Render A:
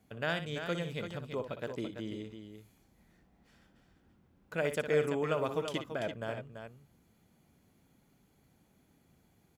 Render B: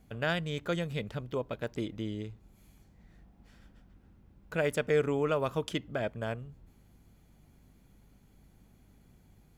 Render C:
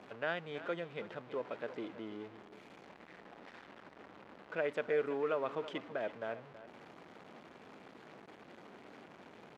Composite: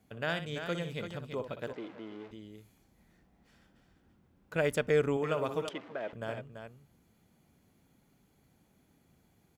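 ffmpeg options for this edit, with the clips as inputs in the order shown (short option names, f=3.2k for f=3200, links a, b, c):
-filter_complex "[2:a]asplit=2[a][b];[0:a]asplit=4[c][d][e][f];[c]atrim=end=1.732[g];[a]atrim=start=1.728:end=2.312[h];[d]atrim=start=2.308:end=4.562[i];[1:a]atrim=start=4.558:end=5.172[j];[e]atrim=start=5.168:end=5.692[k];[b]atrim=start=5.688:end=6.132[l];[f]atrim=start=6.128[m];[g][h]acrossfade=d=0.004:c1=hsin:c2=hsin[n];[n][i]acrossfade=d=0.004:c1=hsin:c2=hsin[o];[o][j]acrossfade=d=0.004:c1=hsin:c2=hsin[p];[p][k]acrossfade=d=0.004:c1=hsin:c2=hsin[q];[q][l]acrossfade=d=0.004:c1=hsin:c2=hsin[r];[r][m]acrossfade=d=0.004:c1=hsin:c2=hsin"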